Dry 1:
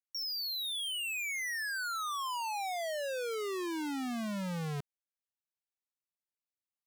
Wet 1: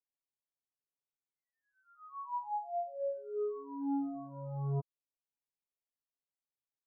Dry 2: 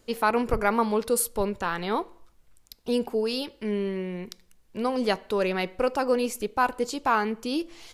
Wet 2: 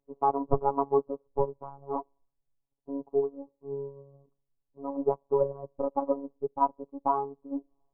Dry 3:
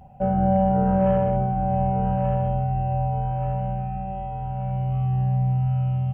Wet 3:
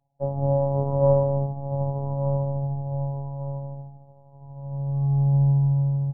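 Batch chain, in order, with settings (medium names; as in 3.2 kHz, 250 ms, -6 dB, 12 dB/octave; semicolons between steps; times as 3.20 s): steep low-pass 1.1 kHz 72 dB/octave; robot voice 139 Hz; upward expansion 2.5:1, over -40 dBFS; trim +5 dB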